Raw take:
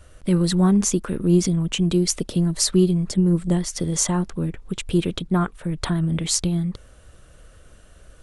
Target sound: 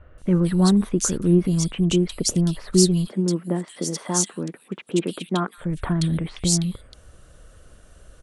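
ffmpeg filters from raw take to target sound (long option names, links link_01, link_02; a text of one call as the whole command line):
ffmpeg -i in.wav -filter_complex "[0:a]asettb=1/sr,asplit=3[link_01][link_02][link_03];[link_01]atrim=end=3.074[link_04];[link_02]atrim=start=3.07:end=5.58,asetpts=PTS-STARTPTS,afade=type=in:duration=0.004:curve=qsin,afade=type=out:start_time=2.506:duration=0.004:curve=qsin,highpass=frequency=200:width=0.5412,highpass=frequency=200:width=1.3066[link_05];[link_03]atrim=start=5.576[link_06];[link_04][link_05]acrossfade=duration=0.004:curve1=hsin:curve2=qsin[link_07];[link_07][link_06]acrossfade=duration=0.004:curve1=qsin:curve2=hsin,acrossover=split=2400[link_08][link_09];[link_09]adelay=180[link_10];[link_08][link_10]amix=inputs=2:normalize=0" out.wav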